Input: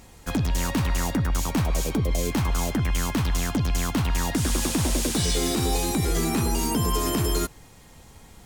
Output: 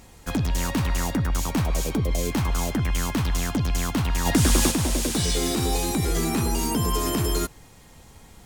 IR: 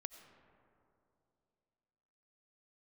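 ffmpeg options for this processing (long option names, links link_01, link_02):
-filter_complex "[0:a]asplit=3[link_01][link_02][link_03];[link_01]afade=type=out:start_time=4.25:duration=0.02[link_04];[link_02]acontrast=38,afade=type=in:start_time=4.25:duration=0.02,afade=type=out:start_time=4.7:duration=0.02[link_05];[link_03]afade=type=in:start_time=4.7:duration=0.02[link_06];[link_04][link_05][link_06]amix=inputs=3:normalize=0"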